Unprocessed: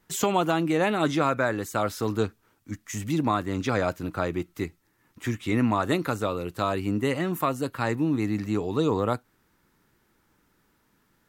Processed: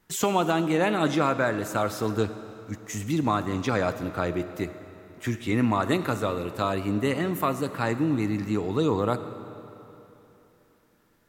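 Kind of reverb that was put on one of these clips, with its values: digital reverb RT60 3.2 s, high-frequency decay 0.85×, pre-delay 5 ms, DRR 11 dB

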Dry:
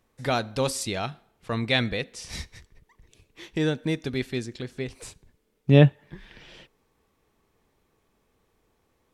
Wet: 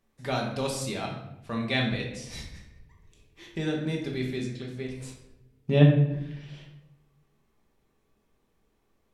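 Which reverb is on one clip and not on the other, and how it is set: shoebox room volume 260 m³, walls mixed, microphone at 1.2 m; gain -7 dB

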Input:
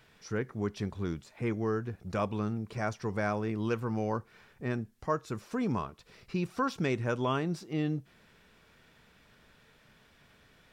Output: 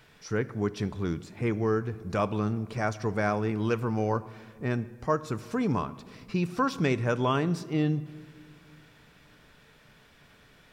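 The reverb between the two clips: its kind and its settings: shoebox room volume 2900 m³, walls mixed, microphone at 0.37 m; gain +4 dB

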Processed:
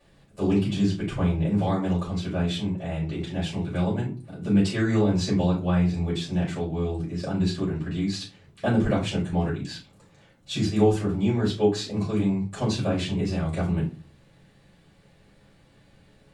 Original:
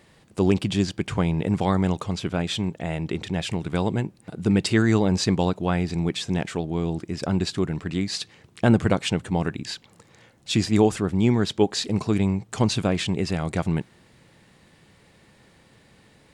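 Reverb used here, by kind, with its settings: shoebox room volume 150 m³, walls furnished, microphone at 5.7 m; gain -15.5 dB

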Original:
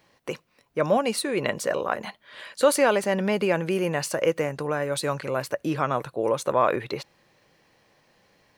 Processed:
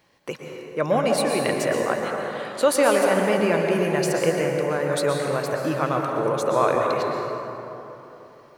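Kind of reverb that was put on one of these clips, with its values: plate-style reverb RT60 3.4 s, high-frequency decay 0.45×, pre-delay 0.105 s, DRR 0.5 dB

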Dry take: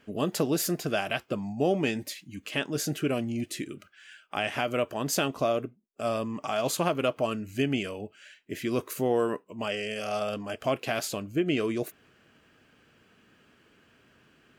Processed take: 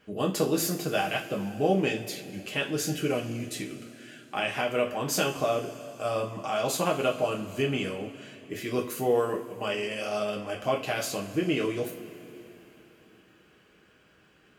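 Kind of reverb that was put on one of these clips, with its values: two-slope reverb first 0.32 s, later 3.8 s, from -20 dB, DRR -1 dB; gain -2.5 dB

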